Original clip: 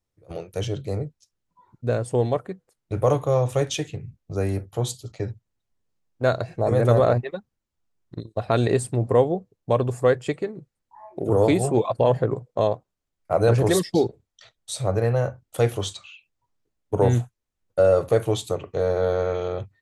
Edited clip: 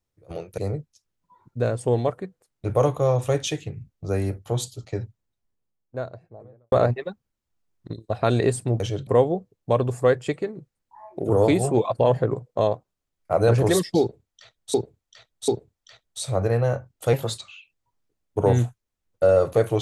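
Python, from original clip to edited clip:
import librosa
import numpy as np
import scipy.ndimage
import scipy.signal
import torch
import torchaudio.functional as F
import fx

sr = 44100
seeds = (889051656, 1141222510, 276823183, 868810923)

y = fx.studio_fade_out(x, sr, start_s=5.18, length_s=1.81)
y = fx.edit(y, sr, fx.move(start_s=0.58, length_s=0.27, to_s=9.07),
    fx.repeat(start_s=14.0, length_s=0.74, count=3),
    fx.speed_span(start_s=15.65, length_s=0.29, speed=1.15), tone=tone)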